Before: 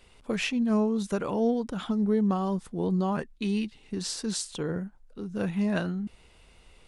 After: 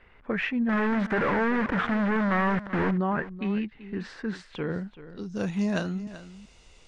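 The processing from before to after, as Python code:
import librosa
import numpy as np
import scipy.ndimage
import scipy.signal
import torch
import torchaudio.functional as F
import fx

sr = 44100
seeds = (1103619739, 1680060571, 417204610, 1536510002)

y = fx.quant_companded(x, sr, bits=2, at=(0.69, 2.91))
y = fx.filter_sweep_lowpass(y, sr, from_hz=1800.0, to_hz=6500.0, start_s=4.39, end_s=5.43, q=3.0)
y = y + 10.0 ** (-15.0 / 20.0) * np.pad(y, (int(384 * sr / 1000.0), 0))[:len(y)]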